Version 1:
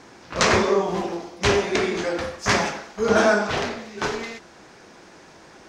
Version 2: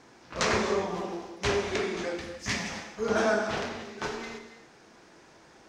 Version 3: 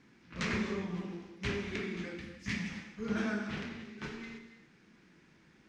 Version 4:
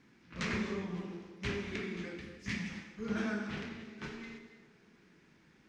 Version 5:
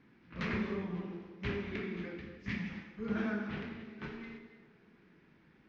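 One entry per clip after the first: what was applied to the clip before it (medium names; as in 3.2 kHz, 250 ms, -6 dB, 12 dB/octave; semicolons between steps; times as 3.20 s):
time-frequency box 2.15–2.70 s, 310–1700 Hz -9 dB; gated-style reverb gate 310 ms flat, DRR 7 dB; trim -8.5 dB
FFT filter 120 Hz 0 dB, 180 Hz +7 dB, 670 Hz -15 dB, 2.2 kHz 0 dB, 6.1 kHz -10 dB; trim -4.5 dB
feedback echo behind a band-pass 204 ms, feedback 65%, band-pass 500 Hz, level -16 dB; trim -1.5 dB
distance through air 240 m; trim +1 dB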